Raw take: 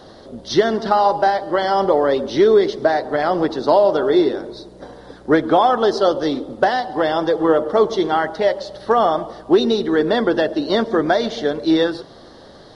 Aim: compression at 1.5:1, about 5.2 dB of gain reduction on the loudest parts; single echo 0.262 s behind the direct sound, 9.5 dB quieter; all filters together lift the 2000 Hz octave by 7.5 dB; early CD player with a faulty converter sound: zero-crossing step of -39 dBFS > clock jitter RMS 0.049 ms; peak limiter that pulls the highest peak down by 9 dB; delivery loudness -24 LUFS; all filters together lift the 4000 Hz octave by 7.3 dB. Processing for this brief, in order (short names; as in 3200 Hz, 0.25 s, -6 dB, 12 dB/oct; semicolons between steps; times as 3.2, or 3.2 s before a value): bell 2000 Hz +8.5 dB; bell 4000 Hz +6 dB; compressor 1.5:1, threshold -23 dBFS; limiter -13.5 dBFS; echo 0.262 s -9.5 dB; zero-crossing step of -39 dBFS; clock jitter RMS 0.049 ms; gain -1.5 dB